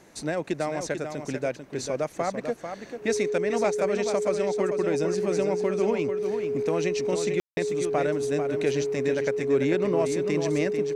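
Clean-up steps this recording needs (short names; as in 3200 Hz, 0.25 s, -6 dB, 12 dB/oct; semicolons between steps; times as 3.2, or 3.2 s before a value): notch 420 Hz, Q 30; room tone fill 7.4–7.57; inverse comb 0.443 s -7.5 dB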